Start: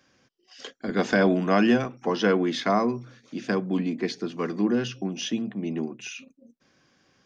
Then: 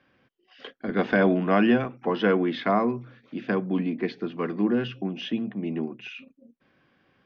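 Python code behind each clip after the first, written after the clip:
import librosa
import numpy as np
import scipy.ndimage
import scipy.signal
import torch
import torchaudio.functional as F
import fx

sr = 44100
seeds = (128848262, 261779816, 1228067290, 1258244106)

y = scipy.signal.sosfilt(scipy.signal.butter(4, 3300.0, 'lowpass', fs=sr, output='sos'), x)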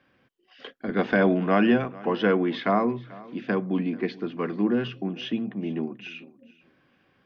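y = fx.echo_feedback(x, sr, ms=438, feedback_pct=17, wet_db=-21)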